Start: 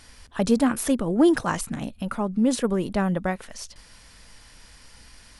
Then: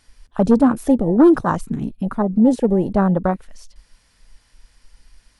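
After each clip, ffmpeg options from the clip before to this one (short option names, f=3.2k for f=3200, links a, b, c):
-af "asoftclip=type=hard:threshold=-14dB,afwtdn=0.0447,volume=7.5dB"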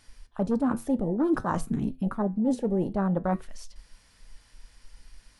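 -af "areverse,acompressor=threshold=-23dB:ratio=5,areverse,flanger=delay=9.3:depth=1.4:regen=-77:speed=0.59:shape=sinusoidal,volume=3.5dB"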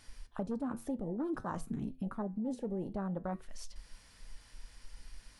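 -af "acompressor=threshold=-38dB:ratio=3"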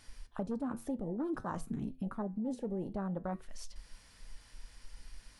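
-af anull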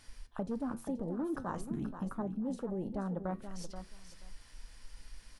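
-af "aecho=1:1:480|960:0.316|0.0538"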